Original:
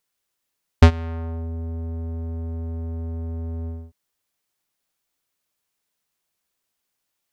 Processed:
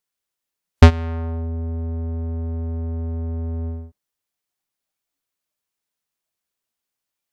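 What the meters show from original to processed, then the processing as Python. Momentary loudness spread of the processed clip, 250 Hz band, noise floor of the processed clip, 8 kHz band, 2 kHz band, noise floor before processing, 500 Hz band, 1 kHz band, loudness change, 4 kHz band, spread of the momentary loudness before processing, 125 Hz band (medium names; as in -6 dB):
14 LU, +3.5 dB, -84 dBFS, no reading, +3.5 dB, -79 dBFS, +3.5 dB, +3.5 dB, +3.5 dB, +3.5 dB, 14 LU, +3.5 dB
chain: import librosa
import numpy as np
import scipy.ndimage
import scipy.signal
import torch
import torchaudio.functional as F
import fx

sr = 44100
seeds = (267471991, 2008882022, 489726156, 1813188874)

y = fx.noise_reduce_blind(x, sr, reduce_db=9)
y = y * librosa.db_to_amplitude(3.5)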